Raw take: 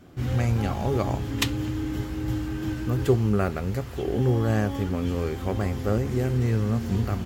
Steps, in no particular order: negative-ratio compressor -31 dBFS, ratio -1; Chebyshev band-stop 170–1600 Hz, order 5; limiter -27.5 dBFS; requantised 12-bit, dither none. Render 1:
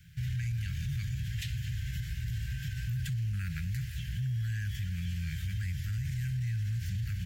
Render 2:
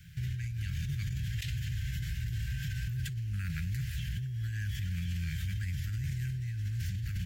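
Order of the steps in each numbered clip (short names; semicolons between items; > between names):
requantised > Chebyshev band-stop > limiter > negative-ratio compressor; requantised > Chebyshev band-stop > negative-ratio compressor > limiter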